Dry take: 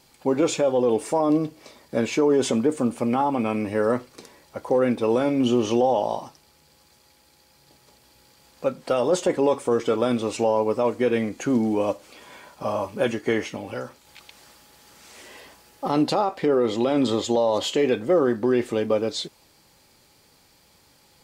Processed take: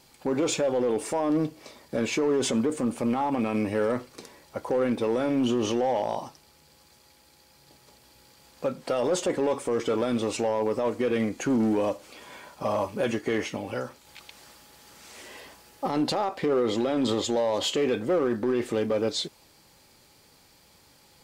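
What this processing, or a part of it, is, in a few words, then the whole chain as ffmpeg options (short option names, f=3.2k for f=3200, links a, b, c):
limiter into clipper: -af "alimiter=limit=-16.5dB:level=0:latency=1:release=34,asoftclip=type=hard:threshold=-19dB"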